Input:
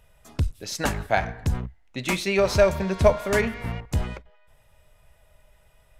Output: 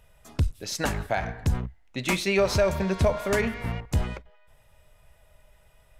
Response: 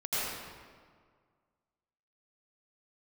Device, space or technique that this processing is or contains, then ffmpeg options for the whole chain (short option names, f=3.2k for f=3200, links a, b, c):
clipper into limiter: -af "asoftclip=type=hard:threshold=-6dB,alimiter=limit=-13dB:level=0:latency=1:release=93"